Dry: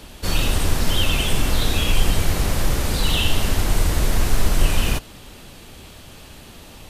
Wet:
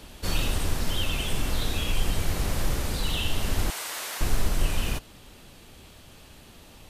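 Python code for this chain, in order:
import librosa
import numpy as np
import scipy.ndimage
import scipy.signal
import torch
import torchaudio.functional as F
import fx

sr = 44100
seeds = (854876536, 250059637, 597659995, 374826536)

y = fx.highpass(x, sr, hz=890.0, slope=12, at=(3.7, 4.21))
y = fx.rider(y, sr, range_db=3, speed_s=0.5)
y = F.gain(torch.from_numpy(y), -7.0).numpy()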